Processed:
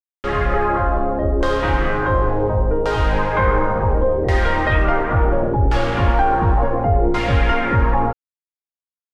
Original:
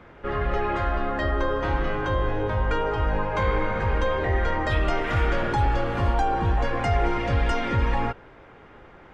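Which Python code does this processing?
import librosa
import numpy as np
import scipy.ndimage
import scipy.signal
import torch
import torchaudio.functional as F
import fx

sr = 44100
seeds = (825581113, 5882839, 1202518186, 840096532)

y = fx.quant_dither(x, sr, seeds[0], bits=6, dither='none')
y = fx.filter_lfo_lowpass(y, sr, shape='saw_down', hz=0.7, low_hz=420.0, high_hz=4700.0, q=1.2)
y = F.gain(torch.from_numpy(y), 6.5).numpy()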